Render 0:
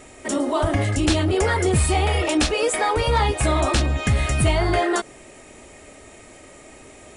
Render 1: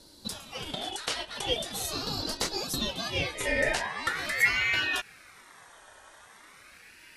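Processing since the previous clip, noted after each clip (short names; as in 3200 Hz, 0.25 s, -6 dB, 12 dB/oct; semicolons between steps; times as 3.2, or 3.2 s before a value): high-pass sweep 1800 Hz -> 110 Hz, 3.05–4.48; ring modulator with a swept carrier 1700 Hz, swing 30%, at 0.42 Hz; gain -6 dB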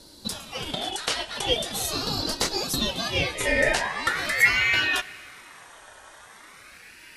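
plate-style reverb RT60 2.3 s, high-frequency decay 1×, DRR 17 dB; gain +5 dB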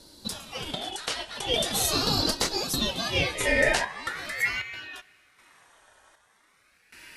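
random-step tremolo 1.3 Hz, depth 90%; gain +3 dB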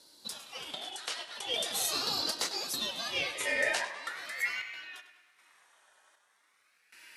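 HPF 770 Hz 6 dB/oct; tape echo 99 ms, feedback 56%, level -11.5 dB, low-pass 5700 Hz; gain -5.5 dB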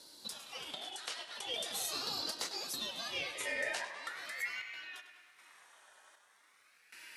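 compressor 1.5:1, threshold -55 dBFS, peak gain reduction 11 dB; gain +3 dB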